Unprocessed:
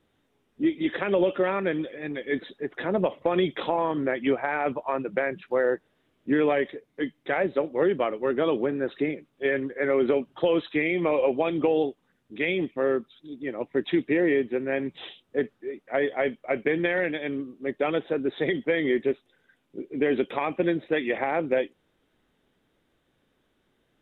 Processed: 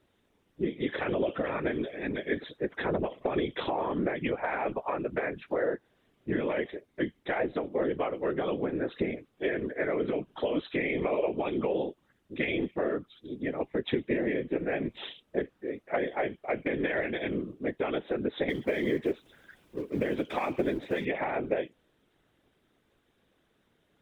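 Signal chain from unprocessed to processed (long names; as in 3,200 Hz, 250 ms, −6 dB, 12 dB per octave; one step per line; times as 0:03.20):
0:18.49–0:21.05: mu-law and A-law mismatch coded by mu
downward compressor, threshold −26 dBFS, peak gain reduction 8 dB
random phases in short frames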